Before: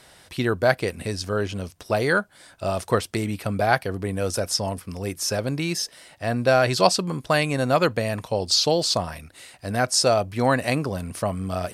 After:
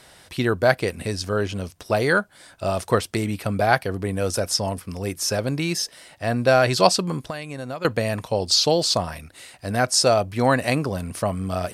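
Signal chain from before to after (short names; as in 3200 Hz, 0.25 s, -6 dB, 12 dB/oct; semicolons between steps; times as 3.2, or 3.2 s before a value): 7.2–7.85 compressor 5:1, threshold -32 dBFS, peak gain reduction 16 dB; gain +1.5 dB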